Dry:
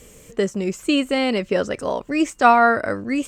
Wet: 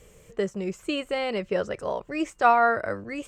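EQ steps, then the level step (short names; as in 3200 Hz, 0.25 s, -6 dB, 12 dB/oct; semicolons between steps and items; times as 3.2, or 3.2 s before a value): bell 260 Hz -13.5 dB 0.35 oct; high shelf 3300 Hz -8 dB; -4.5 dB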